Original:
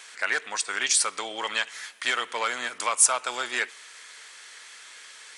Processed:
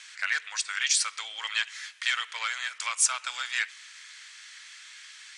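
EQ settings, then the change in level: Butterworth band-pass 3500 Hz, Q 0.58; 0.0 dB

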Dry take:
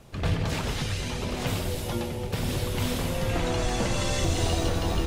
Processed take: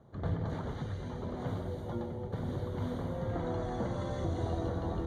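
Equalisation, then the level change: running mean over 17 samples; HPF 66 Hz; -6.0 dB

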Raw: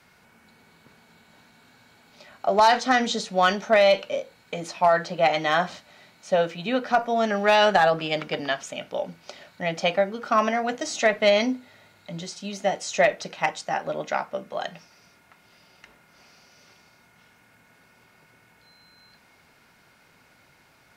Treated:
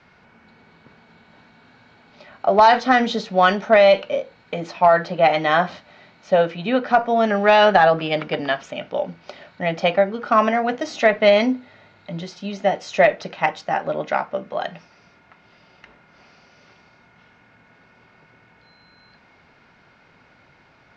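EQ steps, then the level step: LPF 6600 Hz 24 dB/oct; air absorption 70 m; high shelf 5200 Hz -10 dB; +5.5 dB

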